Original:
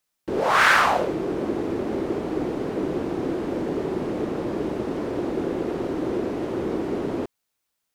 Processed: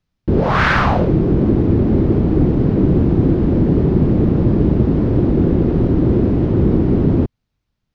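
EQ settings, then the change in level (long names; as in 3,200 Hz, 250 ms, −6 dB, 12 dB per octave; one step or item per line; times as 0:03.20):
high-frequency loss of the air 270 metres
bass and treble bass +13 dB, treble +10 dB
low-shelf EQ 240 Hz +12 dB
+2.0 dB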